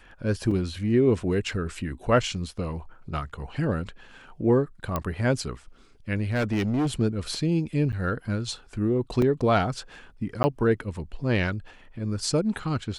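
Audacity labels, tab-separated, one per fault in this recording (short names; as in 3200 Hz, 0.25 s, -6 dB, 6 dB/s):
0.510000	0.510000	gap 4.1 ms
4.960000	4.960000	pop -13 dBFS
6.310000	6.930000	clipped -21.5 dBFS
7.920000	7.930000	gap 8.9 ms
9.220000	9.220000	gap 2.2 ms
10.430000	10.440000	gap 10 ms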